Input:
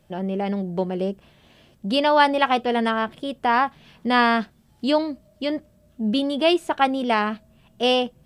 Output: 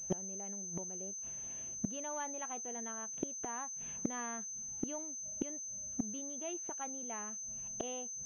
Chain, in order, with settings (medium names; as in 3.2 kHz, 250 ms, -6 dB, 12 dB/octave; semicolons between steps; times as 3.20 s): waveshaping leveller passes 1; inverted gate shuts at -20 dBFS, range -26 dB; class-D stage that switches slowly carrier 6.2 kHz; trim -2 dB